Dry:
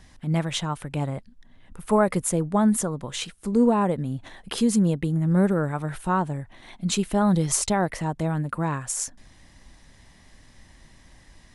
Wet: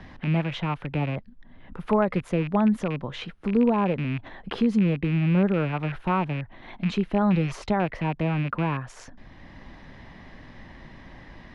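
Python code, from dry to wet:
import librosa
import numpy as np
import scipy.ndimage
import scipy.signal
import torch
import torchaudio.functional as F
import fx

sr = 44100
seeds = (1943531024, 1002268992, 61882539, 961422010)

y = fx.rattle_buzz(x, sr, strikes_db=-31.0, level_db=-23.0)
y = fx.air_absorb(y, sr, metres=300.0)
y = fx.band_squash(y, sr, depth_pct=40)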